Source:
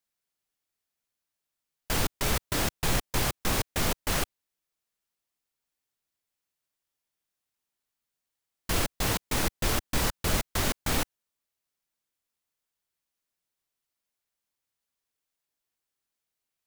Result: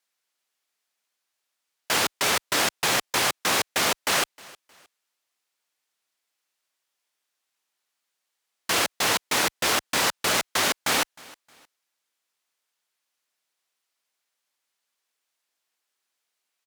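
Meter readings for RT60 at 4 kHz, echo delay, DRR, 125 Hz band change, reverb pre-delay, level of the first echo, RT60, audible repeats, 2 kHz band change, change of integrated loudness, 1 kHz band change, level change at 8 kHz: no reverb, 311 ms, no reverb, -9.5 dB, no reverb, -23.5 dB, no reverb, 2, +8.5 dB, +6.0 dB, +7.5 dB, +6.5 dB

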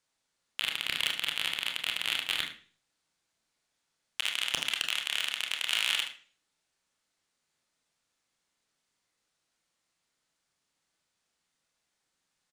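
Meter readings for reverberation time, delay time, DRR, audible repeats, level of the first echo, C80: 0.40 s, 74 ms, 1.5 dB, 1, -10.5 dB, 12.5 dB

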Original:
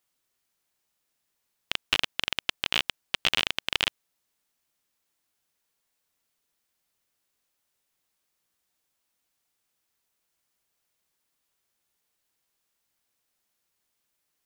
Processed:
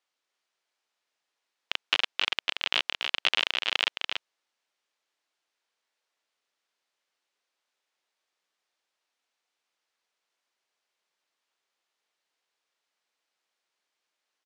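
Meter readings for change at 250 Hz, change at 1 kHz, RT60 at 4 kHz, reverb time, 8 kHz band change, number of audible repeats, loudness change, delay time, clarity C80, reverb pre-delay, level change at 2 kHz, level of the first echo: -7.0 dB, +1.0 dB, no reverb, no reverb, -5.5 dB, 1, 0.0 dB, 286 ms, no reverb, no reverb, +1.0 dB, -5.5 dB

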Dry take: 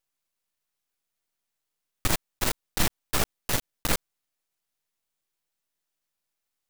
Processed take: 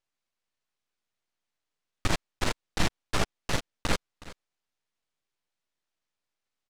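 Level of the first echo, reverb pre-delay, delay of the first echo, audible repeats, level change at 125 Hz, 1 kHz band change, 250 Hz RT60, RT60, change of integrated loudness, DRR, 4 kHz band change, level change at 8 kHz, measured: -18.0 dB, no reverb, 368 ms, 1, 0.0 dB, -0.5 dB, no reverb, no reverb, -3.5 dB, no reverb, -2.0 dB, -7.5 dB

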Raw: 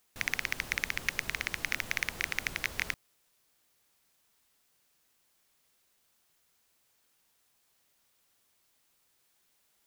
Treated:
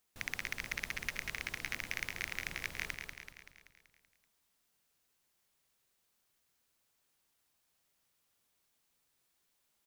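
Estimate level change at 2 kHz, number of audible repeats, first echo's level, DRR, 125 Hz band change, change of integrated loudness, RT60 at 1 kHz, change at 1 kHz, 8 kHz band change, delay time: -6.0 dB, 6, -6.0 dB, no reverb, -4.0 dB, -6.0 dB, no reverb, -6.0 dB, -6.0 dB, 191 ms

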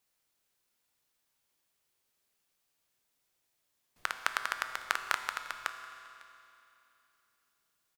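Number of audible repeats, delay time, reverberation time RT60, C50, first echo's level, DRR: 1, 551 ms, 2.9 s, 8.0 dB, -23.0 dB, 7.0 dB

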